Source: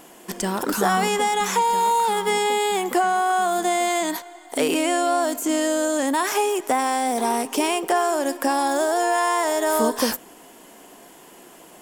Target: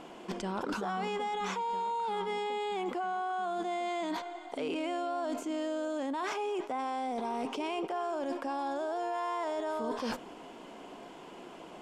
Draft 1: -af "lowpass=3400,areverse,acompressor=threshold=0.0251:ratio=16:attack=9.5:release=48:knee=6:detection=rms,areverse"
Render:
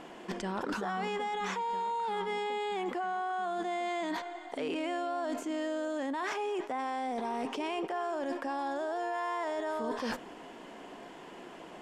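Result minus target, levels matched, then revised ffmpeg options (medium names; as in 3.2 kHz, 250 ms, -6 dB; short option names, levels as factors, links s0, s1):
2 kHz band +2.5 dB
-af "lowpass=3400,equalizer=f=1800:t=o:w=0.25:g=-8.5,areverse,acompressor=threshold=0.0251:ratio=16:attack=9.5:release=48:knee=6:detection=rms,areverse"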